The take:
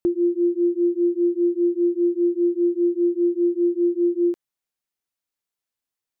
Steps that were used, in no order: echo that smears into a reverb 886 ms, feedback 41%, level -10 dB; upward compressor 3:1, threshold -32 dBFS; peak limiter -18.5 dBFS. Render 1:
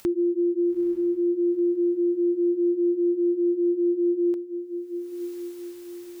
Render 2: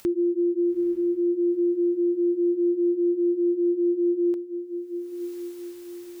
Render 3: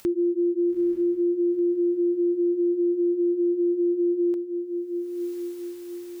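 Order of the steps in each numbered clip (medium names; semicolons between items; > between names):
peak limiter > upward compressor > echo that smears into a reverb; upward compressor > peak limiter > echo that smears into a reverb; upward compressor > echo that smears into a reverb > peak limiter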